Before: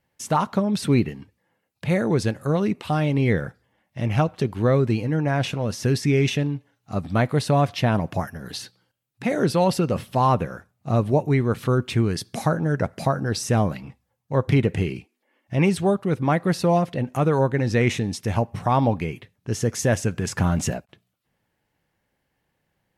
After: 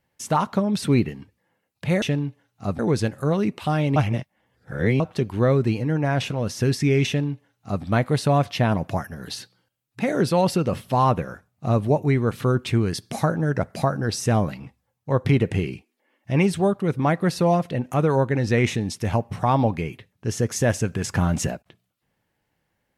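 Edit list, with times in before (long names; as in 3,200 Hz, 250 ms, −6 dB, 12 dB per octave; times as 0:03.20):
0:03.19–0:04.23: reverse
0:06.30–0:07.07: duplicate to 0:02.02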